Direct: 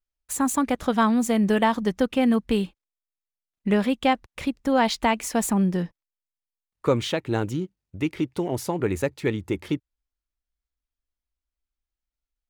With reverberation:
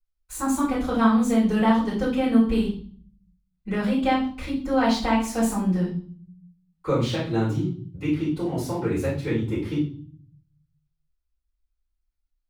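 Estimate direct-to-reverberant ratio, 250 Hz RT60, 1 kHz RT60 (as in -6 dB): -12.0 dB, 0.90 s, 0.45 s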